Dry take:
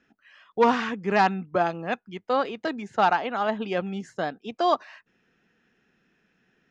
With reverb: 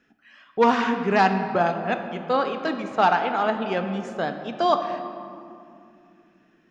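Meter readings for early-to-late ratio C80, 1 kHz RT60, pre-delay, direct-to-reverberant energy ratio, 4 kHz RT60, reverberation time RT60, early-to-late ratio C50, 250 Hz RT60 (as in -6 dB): 8.5 dB, 2.4 s, 3 ms, 6.0 dB, 1.4 s, 2.6 s, 7.5 dB, 4.3 s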